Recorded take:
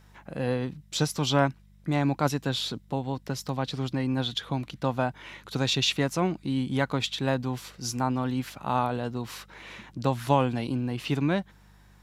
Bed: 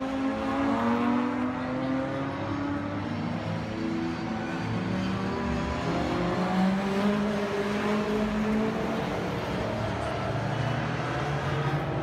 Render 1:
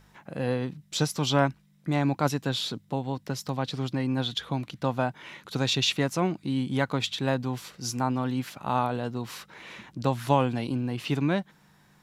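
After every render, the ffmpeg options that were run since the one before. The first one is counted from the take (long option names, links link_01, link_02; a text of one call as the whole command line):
ffmpeg -i in.wav -af "bandreject=frequency=50:width_type=h:width=4,bandreject=frequency=100:width_type=h:width=4" out.wav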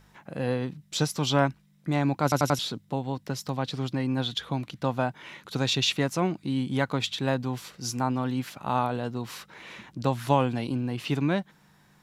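ffmpeg -i in.wav -filter_complex "[0:a]asplit=5[link_01][link_02][link_03][link_04][link_05];[link_01]atrim=end=2.322[link_06];[link_02]atrim=start=2.228:end=2.322[link_07];[link_03]atrim=start=2.228:end=2.322[link_08];[link_04]atrim=start=2.228:end=2.322[link_09];[link_05]atrim=start=2.588[link_10];[link_06][link_07]acrossfade=duration=0.004:curve1=hsin:curve2=hsin[link_11];[link_11][link_08]acrossfade=duration=0.004:curve1=hsin:curve2=hsin[link_12];[link_12][link_09]acrossfade=duration=0.004:curve1=hsin:curve2=hsin[link_13];[link_13][link_10]acrossfade=duration=0.004:curve1=hsin:curve2=hsin" out.wav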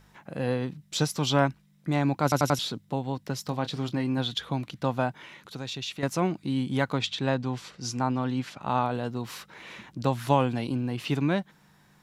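ffmpeg -i in.wav -filter_complex "[0:a]asettb=1/sr,asplit=3[link_01][link_02][link_03];[link_01]atrim=end=3.464[link_04];[link_02]atrim=start=3.46:end=4.18,asetpts=PTS-STARTPTS,afade=type=in:duration=0.004:curve=qsin,afade=type=out:start_time=0.716:duration=0.004:curve=qsin,asplit=2[link_05][link_06];[link_06]adelay=26,volume=-12.5dB[link_07];[link_05][link_07]amix=inputs=2:normalize=0,atrim=end_sample=31752[link_08];[link_03]atrim=start=4.176[link_09];[link_04][link_08]acrossfade=duration=0.004:curve1=hsin:curve2=qsin[link_10];[link_10][link_09]acrossfade=duration=0.004:curve1=qsin:curve2=hsin,asettb=1/sr,asplit=3[link_11][link_12][link_13];[link_11]atrim=end=5.254[link_14];[link_12]atrim=start=5.25:end=6.03,asetpts=PTS-STARTPTS,afade=type=in:duration=0.004:curve=qsin,afade=type=out:start_time=0.776:duration=0.004:curve=qsin,acompressor=threshold=-49dB:ratio=1.5:attack=3.2:release=140:knee=1:detection=peak[link_15];[link_13]atrim=start=6.026[link_16];[link_14][link_15]acrossfade=duration=0.004:curve1=hsin:curve2=qsin[link_17];[link_17][link_16]acrossfade=duration=0.004:curve1=qsin:curve2=hsin,asettb=1/sr,asplit=3[link_18][link_19][link_20];[link_18]atrim=end=6.984[link_21];[link_19]atrim=start=6.98:end=8.91,asetpts=PTS-STARTPTS,afade=type=in:duration=0.004:curve=qsin,afade=type=out:start_time=1.926:duration=0.004:curve=qsin,lowpass=7200[link_22];[link_20]atrim=start=8.906[link_23];[link_21][link_22]acrossfade=duration=0.004:curve1=hsin:curve2=qsin[link_24];[link_24][link_23]acrossfade=duration=0.004:curve1=qsin:curve2=hsin" out.wav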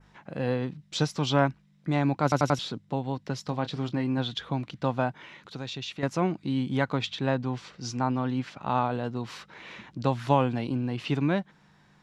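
ffmpeg -i in.wav -af "lowpass=5600,adynamicequalizer=threshold=0.00398:dfrequency=4000:dqfactor=1.1:tfrequency=4000:tqfactor=1.1:attack=5:release=100:ratio=0.375:range=2:mode=cutabove:tftype=bell" out.wav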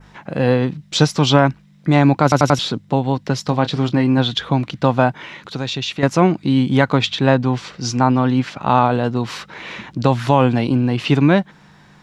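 ffmpeg -i in.wav -af "alimiter=level_in=12.5dB:limit=-1dB:release=50:level=0:latency=1" out.wav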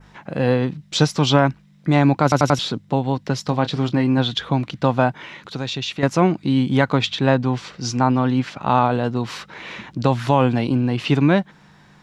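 ffmpeg -i in.wav -af "volume=-2.5dB" out.wav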